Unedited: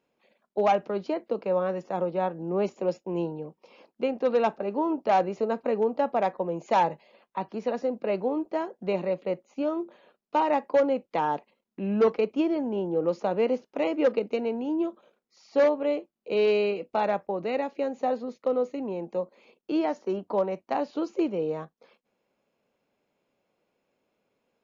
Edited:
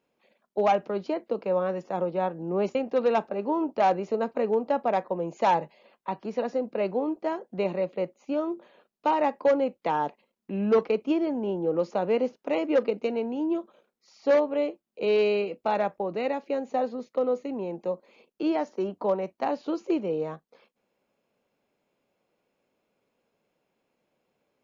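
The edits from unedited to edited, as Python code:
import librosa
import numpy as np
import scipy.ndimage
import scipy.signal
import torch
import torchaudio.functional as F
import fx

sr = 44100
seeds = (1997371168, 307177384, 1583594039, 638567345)

y = fx.edit(x, sr, fx.cut(start_s=2.75, length_s=1.29), tone=tone)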